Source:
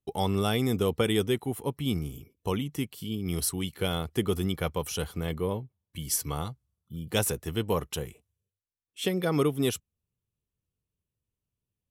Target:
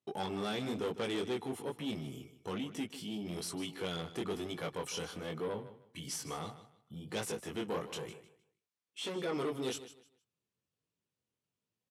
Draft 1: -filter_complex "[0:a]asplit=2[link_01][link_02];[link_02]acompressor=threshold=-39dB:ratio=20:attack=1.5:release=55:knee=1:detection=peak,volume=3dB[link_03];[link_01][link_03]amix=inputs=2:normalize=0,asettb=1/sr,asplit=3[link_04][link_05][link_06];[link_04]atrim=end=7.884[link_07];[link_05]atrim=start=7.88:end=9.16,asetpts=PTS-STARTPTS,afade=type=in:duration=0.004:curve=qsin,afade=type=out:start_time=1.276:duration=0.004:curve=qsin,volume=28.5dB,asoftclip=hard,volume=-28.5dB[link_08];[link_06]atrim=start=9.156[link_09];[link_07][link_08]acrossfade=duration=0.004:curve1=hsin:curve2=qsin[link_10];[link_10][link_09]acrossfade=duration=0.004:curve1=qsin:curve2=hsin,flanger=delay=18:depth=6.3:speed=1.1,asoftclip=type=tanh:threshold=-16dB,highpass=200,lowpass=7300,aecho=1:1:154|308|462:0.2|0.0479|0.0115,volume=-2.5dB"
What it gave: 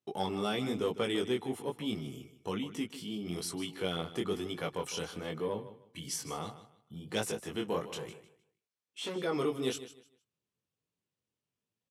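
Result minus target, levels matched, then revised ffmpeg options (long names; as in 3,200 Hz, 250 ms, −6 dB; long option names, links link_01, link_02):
soft clipping: distortion −14 dB
-filter_complex "[0:a]asplit=2[link_01][link_02];[link_02]acompressor=threshold=-39dB:ratio=20:attack=1.5:release=55:knee=1:detection=peak,volume=3dB[link_03];[link_01][link_03]amix=inputs=2:normalize=0,asettb=1/sr,asplit=3[link_04][link_05][link_06];[link_04]atrim=end=7.884[link_07];[link_05]atrim=start=7.88:end=9.16,asetpts=PTS-STARTPTS,afade=type=in:duration=0.004:curve=qsin,afade=type=out:start_time=1.276:duration=0.004:curve=qsin,volume=28.5dB,asoftclip=hard,volume=-28.5dB[link_08];[link_06]atrim=start=9.156[link_09];[link_07][link_08]acrossfade=duration=0.004:curve1=hsin:curve2=qsin[link_10];[link_10][link_09]acrossfade=duration=0.004:curve1=qsin:curve2=hsin,flanger=delay=18:depth=6.3:speed=1.1,asoftclip=type=tanh:threshold=-27.5dB,highpass=200,lowpass=7300,aecho=1:1:154|308|462:0.2|0.0479|0.0115,volume=-2.5dB"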